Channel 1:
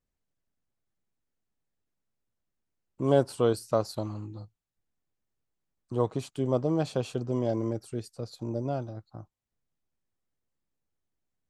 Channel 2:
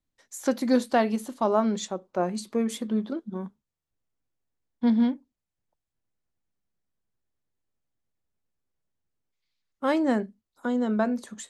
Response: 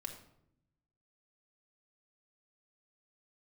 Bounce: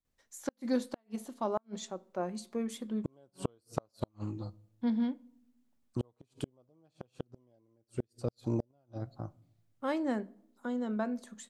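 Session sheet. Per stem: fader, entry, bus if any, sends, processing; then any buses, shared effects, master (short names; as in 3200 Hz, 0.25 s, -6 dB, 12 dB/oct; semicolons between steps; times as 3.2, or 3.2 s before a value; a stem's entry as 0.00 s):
+2.0 dB, 0.05 s, send -14 dB, dry
-10.0 dB, 0.00 s, send -12.5 dB, dry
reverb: on, RT60 0.75 s, pre-delay 4 ms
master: flipped gate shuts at -20 dBFS, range -42 dB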